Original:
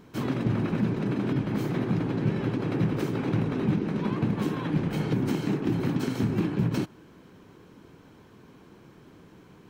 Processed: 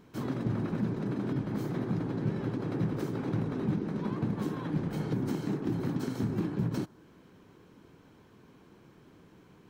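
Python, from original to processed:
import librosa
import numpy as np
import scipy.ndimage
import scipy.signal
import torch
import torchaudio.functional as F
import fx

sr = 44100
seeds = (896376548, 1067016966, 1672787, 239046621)

y = fx.dynamic_eq(x, sr, hz=2600.0, q=1.8, threshold_db=-58.0, ratio=4.0, max_db=-7)
y = y * librosa.db_to_amplitude(-5.0)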